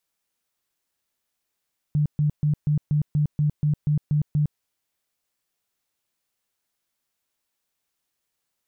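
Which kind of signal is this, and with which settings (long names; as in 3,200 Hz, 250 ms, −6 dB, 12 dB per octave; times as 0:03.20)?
tone bursts 149 Hz, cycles 16, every 0.24 s, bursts 11, −17.5 dBFS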